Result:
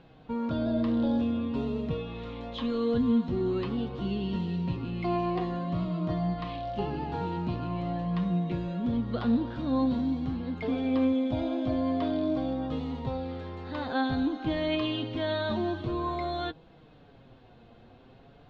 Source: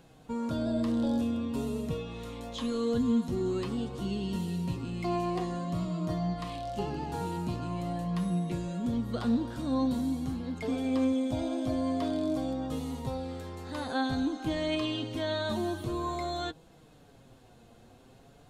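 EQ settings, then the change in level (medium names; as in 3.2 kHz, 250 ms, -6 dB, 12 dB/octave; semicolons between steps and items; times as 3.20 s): low-pass 3.9 kHz 24 dB/octave; +2.0 dB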